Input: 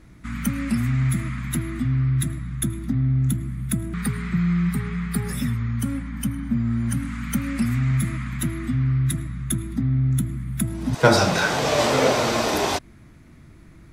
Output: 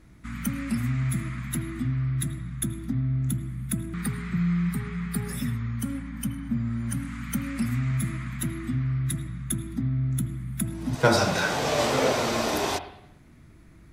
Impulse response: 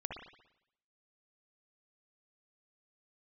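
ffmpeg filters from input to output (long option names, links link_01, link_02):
-filter_complex "[0:a]asplit=2[link_01][link_02];[1:a]atrim=start_sample=2205,highshelf=frequency=8100:gain=9.5[link_03];[link_02][link_03]afir=irnorm=-1:irlink=0,volume=-6.5dB[link_04];[link_01][link_04]amix=inputs=2:normalize=0,volume=-7dB"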